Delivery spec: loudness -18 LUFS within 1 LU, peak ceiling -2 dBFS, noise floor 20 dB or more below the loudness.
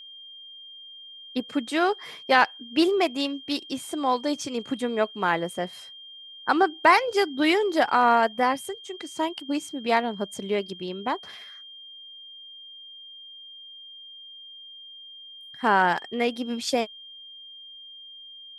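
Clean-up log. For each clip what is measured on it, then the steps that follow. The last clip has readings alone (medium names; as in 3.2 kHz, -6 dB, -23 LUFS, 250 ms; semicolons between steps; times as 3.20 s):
steady tone 3.2 kHz; tone level -42 dBFS; loudness -25.0 LUFS; peak level -5.0 dBFS; loudness target -18.0 LUFS
-> band-stop 3.2 kHz, Q 30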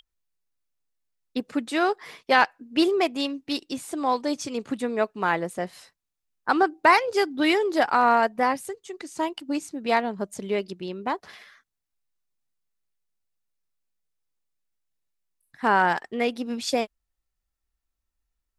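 steady tone not found; loudness -25.0 LUFS; peak level -5.5 dBFS; loudness target -18.0 LUFS
-> trim +7 dB; peak limiter -2 dBFS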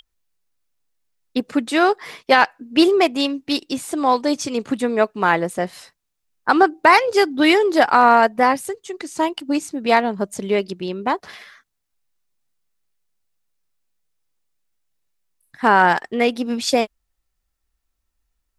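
loudness -18.5 LUFS; peak level -2.0 dBFS; noise floor -75 dBFS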